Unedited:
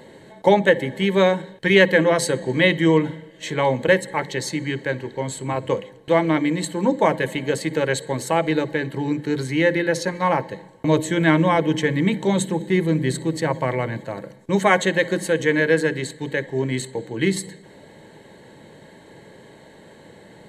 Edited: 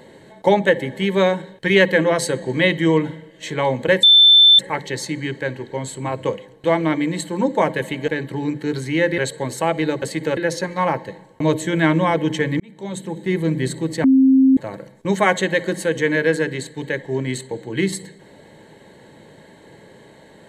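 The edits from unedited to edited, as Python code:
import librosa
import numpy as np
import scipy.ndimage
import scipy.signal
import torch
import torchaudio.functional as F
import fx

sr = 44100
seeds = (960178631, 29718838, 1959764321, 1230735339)

y = fx.edit(x, sr, fx.insert_tone(at_s=4.03, length_s=0.56, hz=3540.0, db=-6.5),
    fx.swap(start_s=7.52, length_s=0.35, other_s=8.71, other_length_s=1.1),
    fx.fade_in_span(start_s=12.04, length_s=0.86),
    fx.bleep(start_s=13.48, length_s=0.53, hz=265.0, db=-9.0), tone=tone)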